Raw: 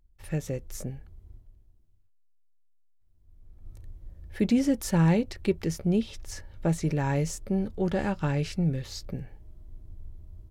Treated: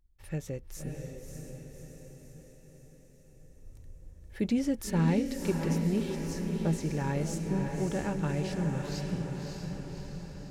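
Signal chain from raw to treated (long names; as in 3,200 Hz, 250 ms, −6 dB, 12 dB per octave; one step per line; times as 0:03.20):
notch filter 680 Hz, Q 22
on a send: feedback delay with all-pass diffusion 594 ms, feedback 58%, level −4 dB
on the sum: level −5 dB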